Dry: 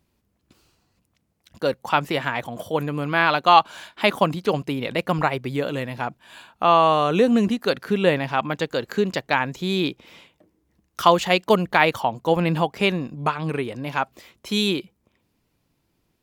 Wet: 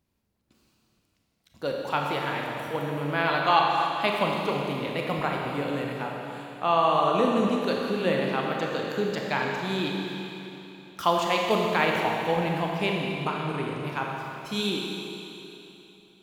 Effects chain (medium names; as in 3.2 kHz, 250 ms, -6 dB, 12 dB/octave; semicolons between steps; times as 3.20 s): Schroeder reverb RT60 3.2 s, combs from 28 ms, DRR -1 dB; trim -8 dB